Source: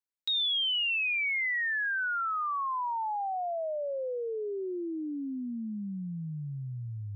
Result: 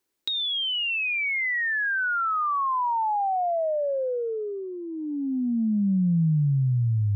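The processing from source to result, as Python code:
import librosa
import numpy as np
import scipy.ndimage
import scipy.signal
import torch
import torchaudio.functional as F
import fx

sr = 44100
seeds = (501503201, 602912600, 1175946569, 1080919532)

y = fx.peak_eq(x, sr, hz=350.0, db=13.5, octaves=0.73)
y = fx.over_compress(y, sr, threshold_db=-35.0, ratio=-1.0)
y = F.gain(torch.from_numpy(y), 9.0).numpy()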